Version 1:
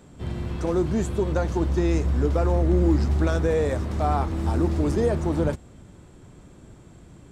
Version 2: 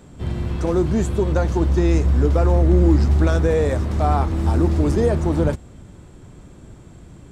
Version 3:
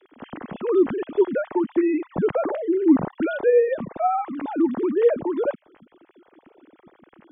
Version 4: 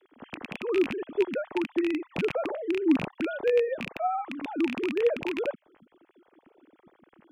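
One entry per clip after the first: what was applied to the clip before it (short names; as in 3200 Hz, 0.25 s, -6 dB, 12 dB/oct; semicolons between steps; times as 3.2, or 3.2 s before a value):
low shelf 110 Hz +4 dB; gain +3.5 dB
sine-wave speech; gain -5 dB
rattling part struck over -32 dBFS, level -13 dBFS; gain -6.5 dB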